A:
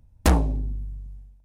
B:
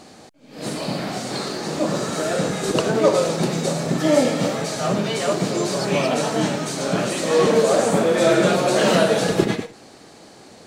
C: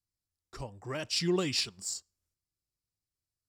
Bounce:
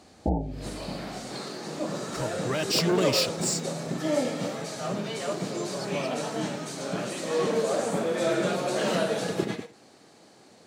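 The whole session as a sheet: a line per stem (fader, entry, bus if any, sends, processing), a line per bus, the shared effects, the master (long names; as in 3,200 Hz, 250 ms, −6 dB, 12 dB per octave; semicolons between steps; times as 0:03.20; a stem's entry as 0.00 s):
−3.5 dB, 0.00 s, no send, Chebyshev low-pass filter 880 Hz, order 10
−9.5 dB, 0.00 s, no send, no processing
−2.0 dB, 1.60 s, no send, leveller curve on the samples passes 3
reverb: not used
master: high-pass filter 92 Hz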